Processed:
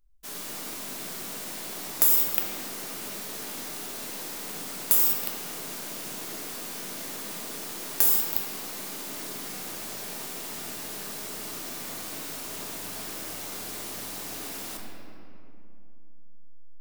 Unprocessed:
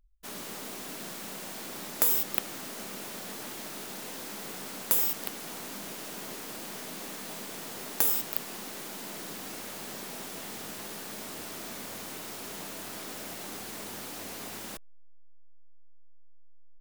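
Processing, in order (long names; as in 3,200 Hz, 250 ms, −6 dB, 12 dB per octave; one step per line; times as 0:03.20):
high-shelf EQ 3,400 Hz +7.5 dB
convolution reverb RT60 2.7 s, pre-delay 7 ms, DRR −1 dB
level −3.5 dB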